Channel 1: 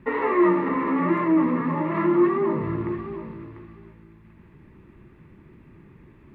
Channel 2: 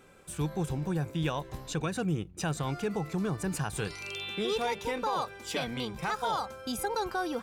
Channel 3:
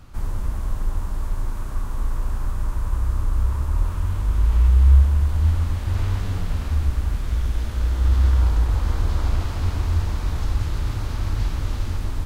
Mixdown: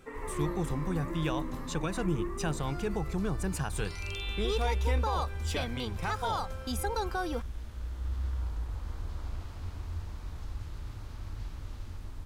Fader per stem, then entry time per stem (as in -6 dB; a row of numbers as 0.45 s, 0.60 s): -17.5 dB, -1.5 dB, -16.5 dB; 0.00 s, 0.00 s, 0.00 s